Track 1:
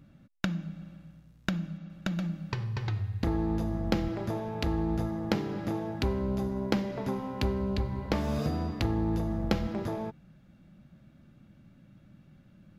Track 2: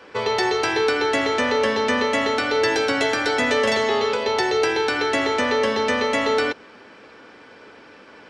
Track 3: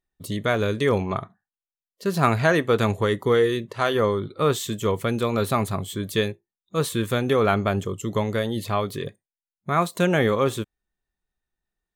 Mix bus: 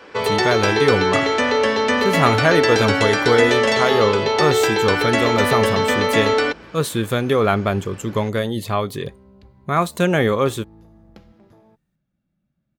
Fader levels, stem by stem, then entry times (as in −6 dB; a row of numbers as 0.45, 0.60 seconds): −18.0, +2.5, +3.0 decibels; 1.65, 0.00, 0.00 seconds